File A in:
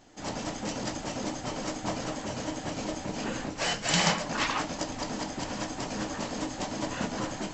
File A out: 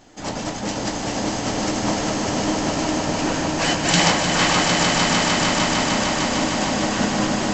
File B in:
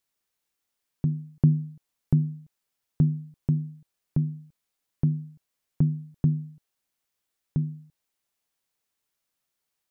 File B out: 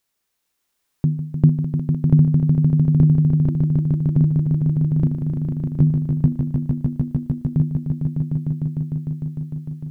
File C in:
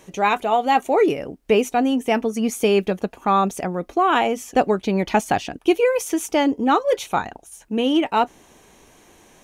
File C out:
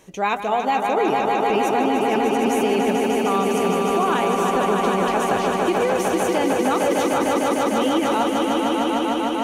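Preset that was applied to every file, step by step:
echo that builds up and dies away 151 ms, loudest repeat 5, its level −6 dB
brickwall limiter −8.5 dBFS
loudness normalisation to −20 LKFS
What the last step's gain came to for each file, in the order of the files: +7.0, +6.0, −2.5 decibels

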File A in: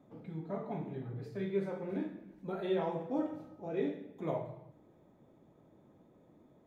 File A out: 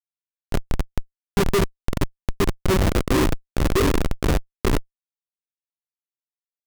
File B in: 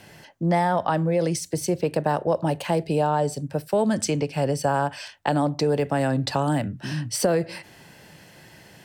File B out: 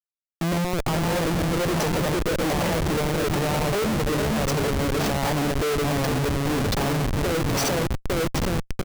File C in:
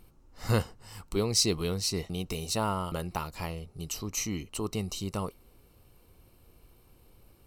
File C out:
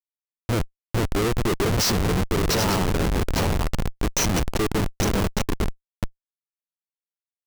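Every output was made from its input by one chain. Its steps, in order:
dynamic equaliser 150 Hz, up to −3 dB, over −39 dBFS, Q 0.78
on a send: bouncing-ball delay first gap 450 ms, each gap 0.9×, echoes 5
on the sum: downward compressor 8 to 1, threshold −23 dBFS
auto-filter low-pass square 1.2 Hz 430–6,000 Hz
comparator with hysteresis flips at −28.5 dBFS
loudness normalisation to −24 LKFS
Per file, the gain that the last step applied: +18.5, +4.5, +11.5 decibels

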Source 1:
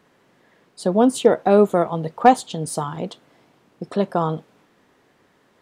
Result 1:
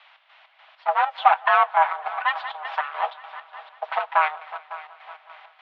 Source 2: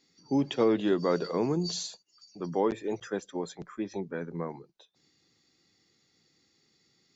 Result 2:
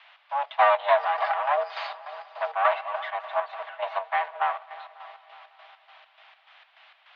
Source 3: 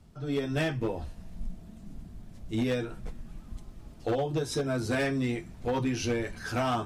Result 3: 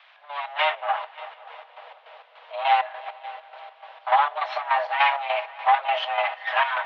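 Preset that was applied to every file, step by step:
lower of the sound and its delayed copy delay 5.8 ms
automatic gain control gain up to 13.5 dB
on a send: echo machine with several playback heads 184 ms, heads all three, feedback 53%, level −21 dB
on the sum: soft clipping −2 dBFS
in parallel at −5.5 dB: bit-depth reduction 6 bits, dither triangular
on the sum: square-wave tremolo 3.4 Hz, depth 60%, duty 55%
single-sideband voice off tune +290 Hz 380–3,100 Hz
level −4 dB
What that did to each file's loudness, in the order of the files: −3.0, +4.5, +7.5 LU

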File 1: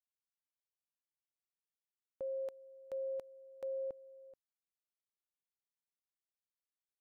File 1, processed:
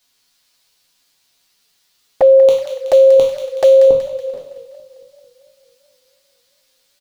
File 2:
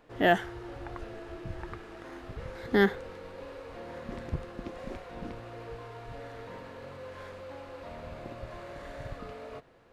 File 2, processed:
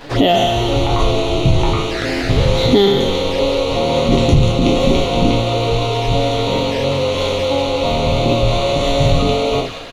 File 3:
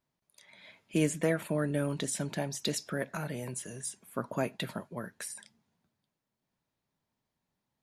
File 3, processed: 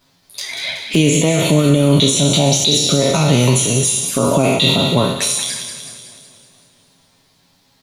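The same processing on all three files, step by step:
peak hold with a decay on every bin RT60 0.62 s
parametric band 4,300 Hz +10 dB 1.1 octaves
comb filter 7.3 ms, depth 39%
downward compressor, threshold −29 dBFS
brickwall limiter −27.5 dBFS
flanger swept by the level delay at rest 11.6 ms, full sweep at −38 dBFS
on a send: delay with a high-pass on its return 187 ms, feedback 51%, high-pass 1,500 Hz, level −7 dB
on the sum: dynamic equaliser 9,700 Hz, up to −3 dB, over −56 dBFS, Q 1.2
feedback echo with a swinging delay time 223 ms, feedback 65%, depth 171 cents, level −22.5 dB
normalise the peak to −1.5 dBFS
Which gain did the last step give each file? +30.5, +25.5, +25.5 decibels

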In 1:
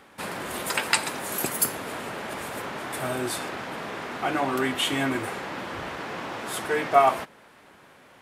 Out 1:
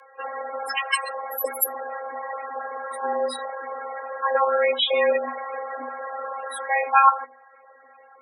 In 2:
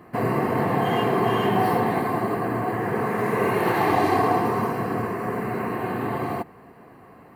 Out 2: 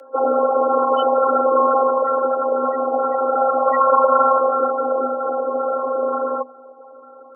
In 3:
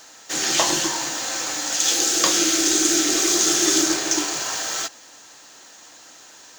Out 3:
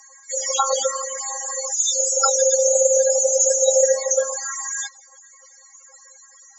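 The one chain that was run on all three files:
spectral peaks only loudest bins 16
phases set to zero 277 Hz
frequency shifter +250 Hz
normalise the peak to −3 dBFS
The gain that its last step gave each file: +8.5, +10.5, +8.5 decibels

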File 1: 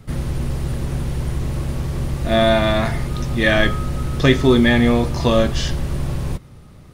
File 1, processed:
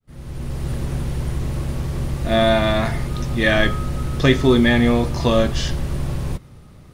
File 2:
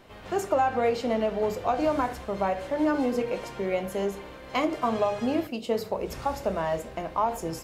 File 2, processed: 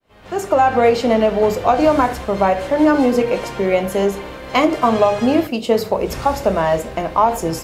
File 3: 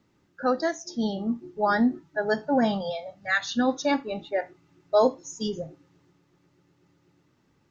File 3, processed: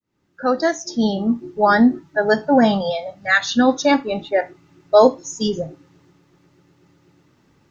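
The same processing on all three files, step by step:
fade in at the beginning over 0.72 s
normalise the peak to −2 dBFS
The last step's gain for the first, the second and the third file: −1.0, +11.5, +8.5 decibels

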